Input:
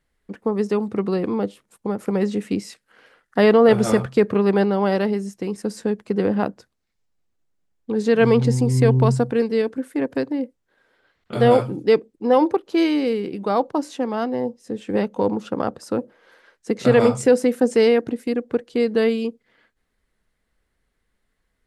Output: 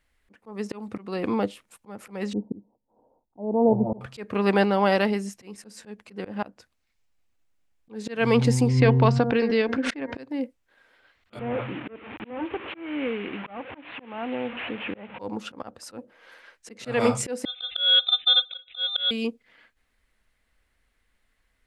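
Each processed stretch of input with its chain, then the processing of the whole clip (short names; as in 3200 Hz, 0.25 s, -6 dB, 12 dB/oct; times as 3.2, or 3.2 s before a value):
2.33–4.01 rippled Chebyshev low-pass 950 Hz, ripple 3 dB + bell 670 Hz -4.5 dB 0.59 oct
8.68–10.17 LPF 5000 Hz 24 dB/oct + de-hum 235 Hz, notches 9 + backwards sustainer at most 60 dB/s
11.39–15.19 delta modulation 16 kbps, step -30 dBFS + HPF 99 Hz + compressor 1.5:1, threshold -32 dBFS
17.45–19.11 spectral contrast raised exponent 1.8 + sample-rate reducer 2800 Hz + inverted band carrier 3800 Hz
whole clip: fifteen-band EQ 160 Hz -9 dB, 400 Hz -6 dB, 2500 Hz +5 dB; auto swell 0.311 s; gain +2 dB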